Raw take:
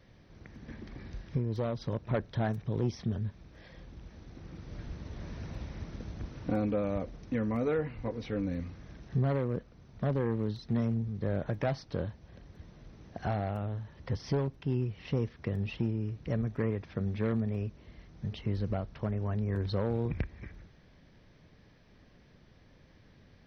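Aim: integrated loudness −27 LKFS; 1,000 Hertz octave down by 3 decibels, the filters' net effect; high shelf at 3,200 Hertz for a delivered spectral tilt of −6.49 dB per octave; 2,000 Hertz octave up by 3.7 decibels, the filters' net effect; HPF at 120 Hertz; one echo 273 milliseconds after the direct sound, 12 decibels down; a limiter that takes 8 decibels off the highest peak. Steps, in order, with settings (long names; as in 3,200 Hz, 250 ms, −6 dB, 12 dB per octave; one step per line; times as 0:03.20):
high-pass filter 120 Hz
parametric band 1,000 Hz −6 dB
parametric band 2,000 Hz +8 dB
high-shelf EQ 3,200 Hz −4.5 dB
brickwall limiter −26.5 dBFS
single-tap delay 273 ms −12 dB
level +11.5 dB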